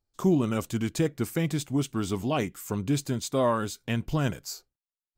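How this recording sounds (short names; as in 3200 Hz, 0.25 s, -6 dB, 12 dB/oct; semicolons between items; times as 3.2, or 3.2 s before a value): noise floor -96 dBFS; spectral tilt -6.5 dB/oct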